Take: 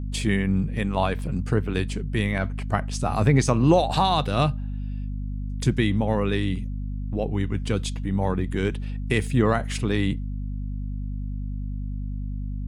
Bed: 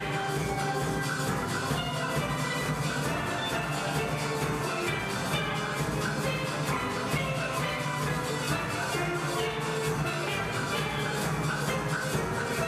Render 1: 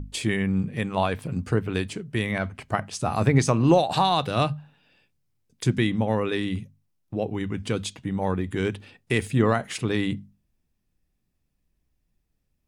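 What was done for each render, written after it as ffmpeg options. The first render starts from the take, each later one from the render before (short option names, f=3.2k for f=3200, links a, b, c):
-af "bandreject=f=50:t=h:w=6,bandreject=f=100:t=h:w=6,bandreject=f=150:t=h:w=6,bandreject=f=200:t=h:w=6,bandreject=f=250:t=h:w=6"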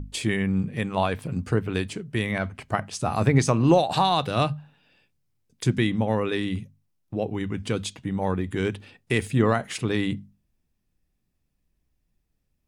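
-af anull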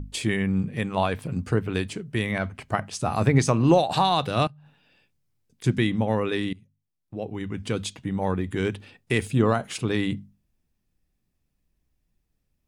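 -filter_complex "[0:a]asettb=1/sr,asplit=3[a][b][c];[a]atrim=end=4.474[d];[b]atrim=start=4.47:end=5.64,asetpts=PTS-STARTPTS,afade=t=in:d=0.004:c=qsin,afade=t=out:st=1.166:d=0.004:c=qsin,acompressor=threshold=-45dB:ratio=10:attack=3.2:release=140:knee=1:detection=peak[e];[c]atrim=start=5.636[f];[d][e]acrossfade=d=0.004:c1=hsin:c2=qsin[g];[g][f]acrossfade=d=0.004:c1=qsin:c2=hsin,asettb=1/sr,asplit=3[h][i][j];[h]atrim=end=9.244[k];[i]atrim=start=9.24:end=9.87,asetpts=PTS-STARTPTS,afade=t=in:d=0.004:c=qsin,afade=t=out:st=0.626:d=0.004:c=qsin,equalizer=f=1.9k:w=5.2:g=-9[l];[j]atrim=start=9.866[m];[k][l]acrossfade=d=0.004:c1=hsin:c2=qsin[n];[n][m]acrossfade=d=0.004:c1=qsin:c2=hsin,asplit=2[o][p];[o]atrim=end=6.53,asetpts=PTS-STARTPTS,afade=t=out:st=6.526:d=0.004:c=hsin:silence=0.0794328[q];[p]atrim=start=6.53,asetpts=PTS-STARTPTS,afade=t=in:d=1.31:silence=0.0794328[r];[q][r]concat=n=2:v=0:a=1"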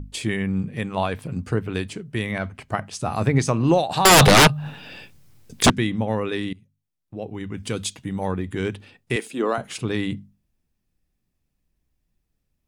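-filter_complex "[0:a]asettb=1/sr,asplit=3[a][b][c];[a]atrim=end=4.054[d];[b]atrim=start=4.05:end=5.7,asetpts=PTS-STARTPTS,afade=t=in:d=0.004:c=qsin,afade=t=out:st=1.646:d=0.004:c=qsin,aeval=exprs='0.398*sin(PI/2*7.94*val(0)/0.398)':c=same[e];[c]atrim=start=5.696[f];[d][e]acrossfade=d=0.004:c1=hsin:c2=qsin[g];[g][f]acrossfade=d=0.004:c1=qsin:c2=hsin,asettb=1/sr,asplit=3[h][i][j];[h]atrim=end=7.574[k];[i]atrim=start=7.57:end=8.27,asetpts=PTS-STARTPTS,afade=t=in:d=0.004:c=qsin,afade=t=out:st=0.696:d=0.004:c=qsin,aemphasis=mode=production:type=cd[l];[j]atrim=start=8.266[m];[k][l]acrossfade=d=0.004:c1=hsin:c2=qsin[n];[n][m]acrossfade=d=0.004:c1=qsin:c2=hsin,asettb=1/sr,asplit=3[o][p][q];[o]atrim=end=9.164[r];[p]atrim=start=9.16:end=9.58,asetpts=PTS-STARTPTS,afade=t=in:d=0.004:c=qsin,afade=t=out:st=0.416:d=0.004:c=qsin,highpass=f=270:w=0.5412,highpass=f=270:w=1.3066[s];[q]atrim=start=9.576[t];[r][s]acrossfade=d=0.004:c1=hsin:c2=qsin[u];[u][t]acrossfade=d=0.004:c1=qsin:c2=hsin"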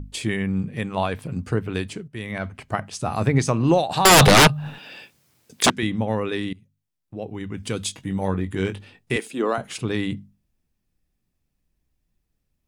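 -filter_complex "[0:a]asettb=1/sr,asplit=3[a][b][c];[a]atrim=end=4.784[d];[b]atrim=start=4.78:end=5.83,asetpts=PTS-STARTPTS,afade=t=in:d=0.004:c=qsin,afade=t=out:st=1.046:d=0.004:c=qsin,highpass=f=380:p=1[e];[c]atrim=start=5.826[f];[d][e]acrossfade=d=0.004:c1=hsin:c2=qsin[g];[g][f]acrossfade=d=0.004:c1=qsin:c2=hsin,asettb=1/sr,asplit=3[h][i][j];[h]atrim=end=7.864[k];[i]atrim=start=7.86:end=9.18,asetpts=PTS-STARTPTS,afade=t=in:d=0.004:c=qsin,afade=t=out:st=1.316:d=0.004:c=qsin,asplit=2[l][m];[m]adelay=21,volume=-8dB[n];[l][n]amix=inputs=2:normalize=0,atrim=end_sample=58212[o];[j]atrim=start=9.176[p];[k][o]acrossfade=d=0.004:c1=hsin:c2=qsin[q];[q][p]acrossfade=d=0.004:c1=qsin:c2=hsin,asplit=2[r][s];[r]atrim=end=2.08,asetpts=PTS-STARTPTS,afade=t=out:st=2.076:d=0.004:c=hsin:silence=0.251189[t];[s]atrim=start=2.08,asetpts=PTS-STARTPTS,afade=t=in:d=0.42:silence=0.251189[u];[t][u]concat=n=2:v=0:a=1"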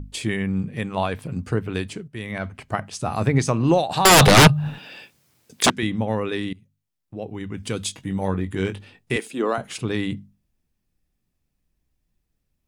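-filter_complex "[0:a]asettb=1/sr,asplit=3[a][b][c];[a]atrim=end=4.374[d];[b]atrim=start=4.37:end=4.86,asetpts=PTS-STARTPTS,afade=t=in:d=0.004:c=qsin,afade=t=out:st=0.486:d=0.004:c=qsin,equalizer=f=100:w=0.53:g=7[e];[c]atrim=start=4.856[f];[d][e]acrossfade=d=0.004:c1=hsin:c2=qsin[g];[g][f]acrossfade=d=0.004:c1=qsin:c2=hsin"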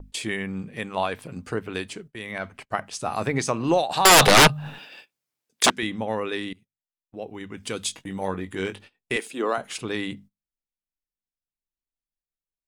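-af "agate=range=-21dB:threshold=-40dB:ratio=16:detection=peak,equalizer=f=95:t=o:w=2.6:g=-12"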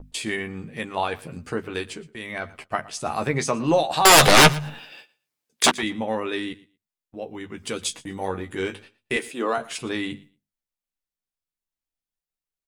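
-filter_complex "[0:a]asplit=2[a][b];[b]adelay=13,volume=-6.5dB[c];[a][c]amix=inputs=2:normalize=0,aecho=1:1:116|232:0.0891|0.0152"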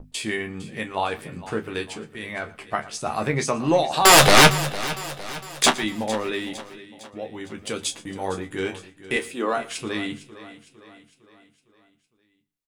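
-filter_complex "[0:a]asplit=2[a][b];[b]adelay=28,volume=-11.5dB[c];[a][c]amix=inputs=2:normalize=0,aecho=1:1:457|914|1371|1828|2285:0.158|0.0808|0.0412|0.021|0.0107"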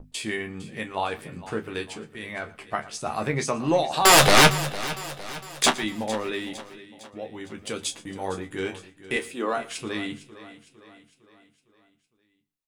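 -af "volume=-2.5dB"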